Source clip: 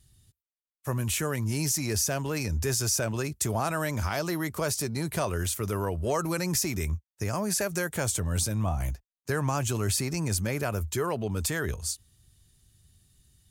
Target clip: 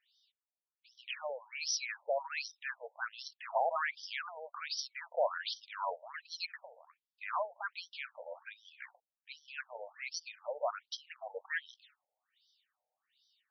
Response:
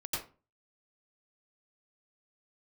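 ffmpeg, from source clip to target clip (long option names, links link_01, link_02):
-filter_complex "[0:a]acrossover=split=140|3800[link_01][link_02][link_03];[link_01]acompressor=mode=upward:threshold=-39dB:ratio=2.5[link_04];[link_04][link_02][link_03]amix=inputs=3:normalize=0,afftfilt=real='re*between(b*sr/1024,630*pow(4300/630,0.5+0.5*sin(2*PI*1.3*pts/sr))/1.41,630*pow(4300/630,0.5+0.5*sin(2*PI*1.3*pts/sr))*1.41)':imag='im*between(b*sr/1024,630*pow(4300/630,0.5+0.5*sin(2*PI*1.3*pts/sr))/1.41,630*pow(4300/630,0.5+0.5*sin(2*PI*1.3*pts/sr))*1.41)':win_size=1024:overlap=0.75,volume=1dB"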